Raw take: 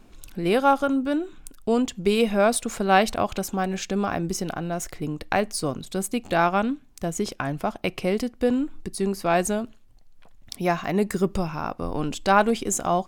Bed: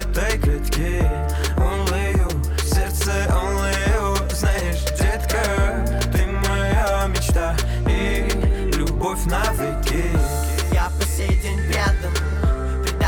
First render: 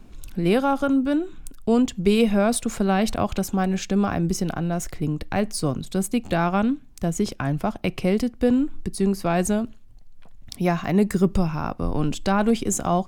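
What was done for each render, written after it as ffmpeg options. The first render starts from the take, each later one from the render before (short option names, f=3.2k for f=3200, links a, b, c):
-filter_complex "[0:a]acrossover=split=240[a][b];[a]acontrast=87[c];[b]alimiter=limit=-12.5dB:level=0:latency=1:release=55[d];[c][d]amix=inputs=2:normalize=0"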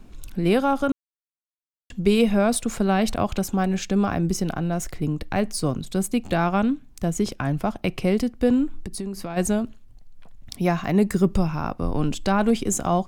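-filter_complex "[0:a]asplit=3[a][b][c];[a]afade=t=out:st=8.73:d=0.02[d];[b]acompressor=threshold=-26dB:ratio=10:attack=3.2:release=140:knee=1:detection=peak,afade=t=in:st=8.73:d=0.02,afade=t=out:st=9.36:d=0.02[e];[c]afade=t=in:st=9.36:d=0.02[f];[d][e][f]amix=inputs=3:normalize=0,asplit=3[g][h][i];[g]atrim=end=0.92,asetpts=PTS-STARTPTS,afade=t=out:st=0.916:d=0.004:c=hsin[j];[h]atrim=start=0.92:end=1.9,asetpts=PTS-STARTPTS,volume=0[k];[i]atrim=start=1.9,asetpts=PTS-STARTPTS,afade=t=in:d=0.004:c=hsin[l];[j][k][l]concat=n=3:v=0:a=1"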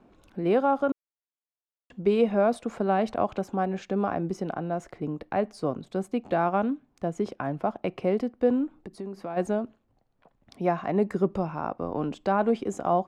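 -af "bandpass=f=630:t=q:w=0.8:csg=0"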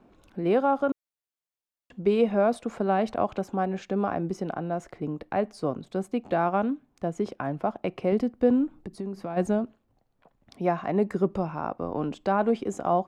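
-filter_complex "[0:a]asettb=1/sr,asplit=3[a][b][c];[a]atrim=end=8.124[d];[b]atrim=start=8.12:end=9.64,asetpts=PTS-STARTPTS,afade=t=in:d=0.004:c=qsin,afade=t=out:st=1.516:d=0.004:c=qsin,bass=f=250:g=6,treble=f=4k:g=2[e];[c]atrim=start=9.636[f];[d][e]acrossfade=d=0.004:c1=hsin:c2=qsin[g];[g][f]acrossfade=d=0.004:c1=qsin:c2=hsin"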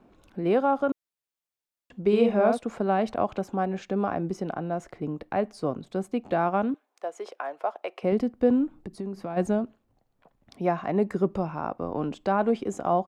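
-filter_complex "[0:a]asplit=3[a][b][c];[a]afade=t=out:st=2.12:d=0.02[d];[b]asplit=2[e][f];[f]adelay=48,volume=-4dB[g];[e][g]amix=inputs=2:normalize=0,afade=t=in:st=2.12:d=0.02,afade=t=out:st=2.57:d=0.02[h];[c]afade=t=in:st=2.57:d=0.02[i];[d][h][i]amix=inputs=3:normalize=0,asettb=1/sr,asplit=3[j][k][l];[j]atrim=end=6.744[m];[k]atrim=start=6.74:end=8.03,asetpts=PTS-STARTPTS,afade=t=in:d=0.004:c=qsin,afade=t=out:st=1.286:d=0.004:c=qsin,highpass=f=480:w=0.5412,highpass=f=480:w=1.3066[n];[l]atrim=start=8.026[o];[m][n]acrossfade=d=0.004:c1=hsin:c2=qsin[p];[p][o]acrossfade=d=0.004:c1=qsin:c2=hsin"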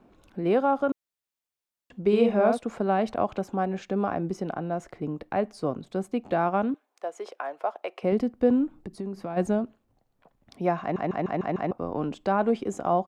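-filter_complex "[0:a]asplit=7[a][b][c][d][e][f][g];[a]atrim=end=10.962[h];[b]atrim=start=10.808:end=10.962[i];[c]atrim=start=10.808:end=10.962[j];[d]atrim=start=10.808:end=10.962[k];[e]atrim=start=10.808:end=10.962[l];[f]atrim=start=10.808:end=10.962[m];[g]atrim=start=11.708[n];[h][i]acrossfade=d=0.004:c1=hsin:c2=hsin[o];[o][j]acrossfade=d=0.004:c1=hsin:c2=hsin[p];[p][k]acrossfade=d=0.004:c1=hsin:c2=hsin[q];[q][l]acrossfade=d=0.004:c1=hsin:c2=hsin[r];[r][m]acrossfade=d=0.004:c1=hsin:c2=hsin[s];[s][n]acrossfade=d=0.004:c1=hsin:c2=hsin"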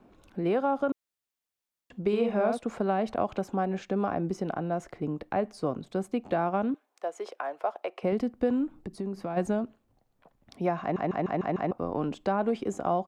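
-filter_complex "[0:a]acrossover=split=850|1700[a][b][c];[a]acompressor=threshold=-24dB:ratio=4[d];[b]acompressor=threshold=-35dB:ratio=4[e];[c]acompressor=threshold=-45dB:ratio=4[f];[d][e][f]amix=inputs=3:normalize=0"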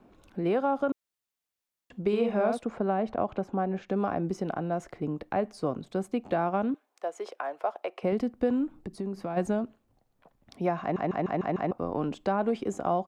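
-filter_complex "[0:a]asettb=1/sr,asplit=3[a][b][c];[a]atrim=end=2.654[d];[b]atrim=start=2.65:end=3.89,asetpts=PTS-STARTPTS,afade=t=in:d=0.004:c=qsin,afade=t=out:st=1.236:d=0.004:c=qsin,lowpass=f=1.8k:p=1[e];[c]atrim=start=3.886[f];[d][e]acrossfade=d=0.004:c1=hsin:c2=qsin[g];[g][f]acrossfade=d=0.004:c1=qsin:c2=hsin"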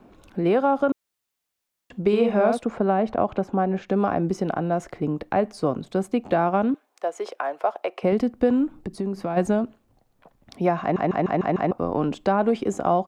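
-af "volume=6.5dB"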